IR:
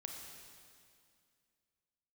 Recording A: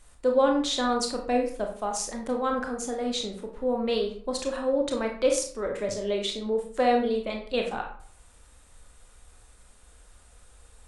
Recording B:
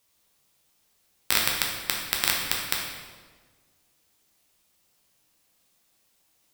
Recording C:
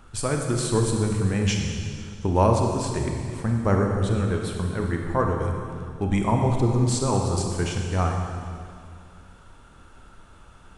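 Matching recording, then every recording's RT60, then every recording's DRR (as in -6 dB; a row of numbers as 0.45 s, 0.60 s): C; 0.55 s, 1.4 s, 2.3 s; 2.0 dB, -2.0 dB, 1.5 dB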